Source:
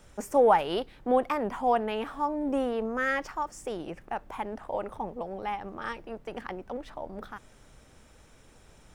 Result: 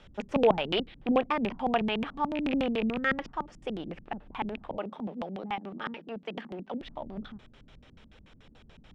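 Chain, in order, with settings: rattling part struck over -37 dBFS, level -28 dBFS; 4.77–6.82 steep high-pass 160 Hz 72 dB/oct; LFO low-pass square 6.9 Hz 220–3300 Hz

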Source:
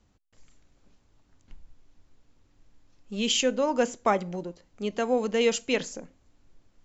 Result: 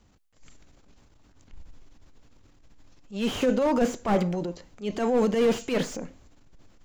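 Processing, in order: transient shaper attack -11 dB, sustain +5 dB; slew limiter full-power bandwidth 36 Hz; gain +5 dB

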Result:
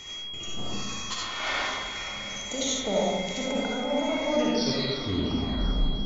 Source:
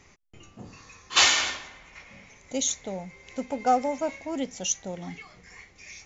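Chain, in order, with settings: tape stop at the end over 1.88 s; notch 1700 Hz, Q 9.3; treble ducked by the level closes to 2200 Hz, closed at -24 dBFS; high shelf 2100 Hz +9 dB; notches 60/120/180/240/300 Hz; negative-ratio compressor -32 dBFS, ratio -1; dynamic EQ 2900 Hz, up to -7 dB, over -50 dBFS, Q 1.8; whine 3300 Hz -42 dBFS; echo with dull and thin repeats by turns 0.173 s, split 1100 Hz, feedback 80%, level -12 dB; digital reverb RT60 1.1 s, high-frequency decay 0.45×, pre-delay 25 ms, DRR -4.5 dB

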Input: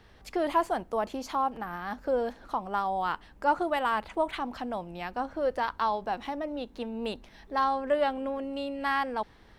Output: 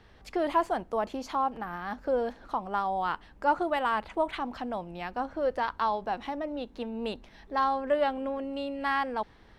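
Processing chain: high shelf 8300 Hz -8.5 dB

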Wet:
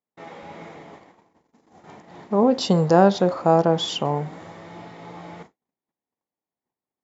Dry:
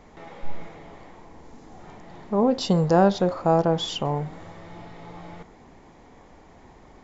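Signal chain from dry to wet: HPF 140 Hz 12 dB/oct; gate -45 dBFS, range -45 dB; gain +3 dB

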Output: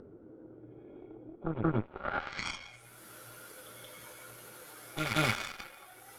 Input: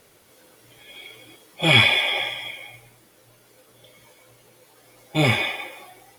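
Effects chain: reverse echo 0.178 s -6.5 dB; low-pass sweep 340 Hz -> 12000 Hz, 1.9–2.89; added harmonics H 3 -14 dB, 6 -26 dB, 7 -26 dB, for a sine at -6 dBFS; in parallel at -2 dB: upward compressor, threshold -27 dBFS; on the sum: bell 1400 Hz +13.5 dB 0.31 oct; compressor 2.5:1, threshold -31 dBFS, peak gain reduction 14 dB

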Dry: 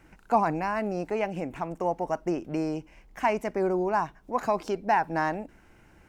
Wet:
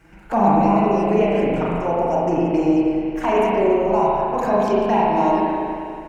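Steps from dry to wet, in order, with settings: reverse delay 0.108 s, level -10.5 dB; HPF 48 Hz 6 dB/oct; low shelf 79 Hz +9 dB; de-hum 86.86 Hz, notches 9; in parallel at -1.5 dB: limiter -21 dBFS, peak gain reduction 9.5 dB; on the sum: envelope flanger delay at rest 6.7 ms, full sweep at -20 dBFS; doubler 31 ms -13 dB; spring tank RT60 2.4 s, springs 35/40 ms, chirp 55 ms, DRR -6 dB; gain +1 dB

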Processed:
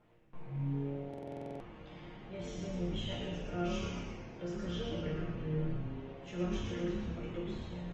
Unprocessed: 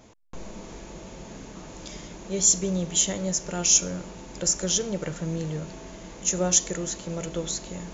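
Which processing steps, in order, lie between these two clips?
LPF 3000 Hz 24 dB/oct; resonator bank A#2 sus4, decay 0.74 s; on a send: frequency-shifting echo 0.115 s, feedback 58%, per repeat -140 Hz, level -3 dB; on the sum: stuck buffer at 1.09, samples 2048, times 10; gain +9 dB; Opus 24 kbps 48000 Hz

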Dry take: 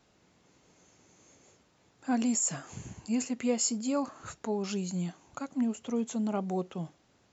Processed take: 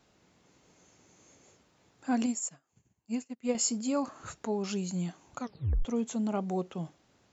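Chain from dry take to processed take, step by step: 2.26–3.55 upward expander 2.5:1, over -45 dBFS; 5.39 tape stop 0.46 s

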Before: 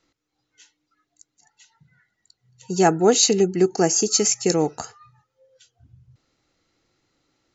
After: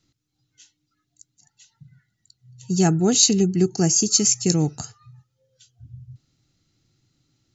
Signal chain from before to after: graphic EQ 125/500/1000/2000 Hz +10/-11/-9/-7 dB; gain +2.5 dB

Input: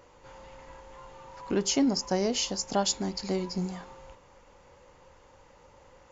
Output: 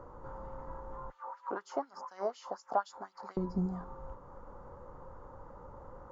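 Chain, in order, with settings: resonant high shelf 1800 Hz -12 dB, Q 3; 1.1–3.37 LFO high-pass sine 4.1 Hz 650–3300 Hz; tilt -3 dB/oct; three-band squash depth 40%; gain -6.5 dB

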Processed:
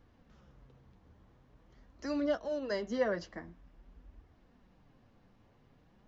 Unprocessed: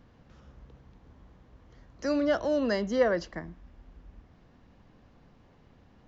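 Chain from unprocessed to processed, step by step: flange 0.47 Hz, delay 2.2 ms, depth 8.3 ms, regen -27%; 2.26–2.7 upward expander 1.5:1, over -38 dBFS; gain -2.5 dB

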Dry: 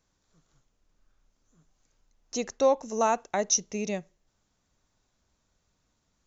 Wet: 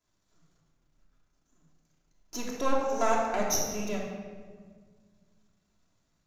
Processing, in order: half-wave gain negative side -12 dB; low shelf 71 Hz -7.5 dB; shoebox room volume 2000 m³, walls mixed, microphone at 3 m; gain -3 dB

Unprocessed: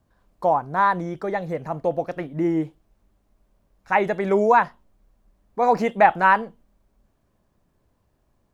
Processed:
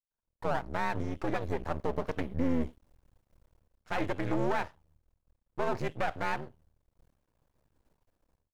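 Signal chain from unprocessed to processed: AGC gain up to 11.5 dB; expander -49 dBFS; frequency shift -76 Hz; limiter -9.5 dBFS, peak gain reduction 8.5 dB; half-wave rectifier; gain -8.5 dB

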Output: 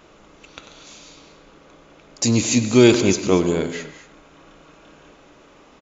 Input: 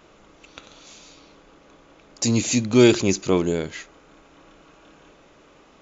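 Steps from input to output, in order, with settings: speakerphone echo 0.1 s, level -12 dB; non-linear reverb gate 0.26 s rising, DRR 11 dB; maximiser +3.5 dB; gain -1 dB

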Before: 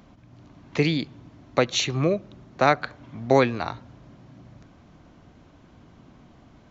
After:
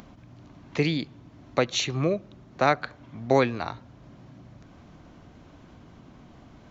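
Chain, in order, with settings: upward compressor, threshold -40 dBFS; gain -2.5 dB

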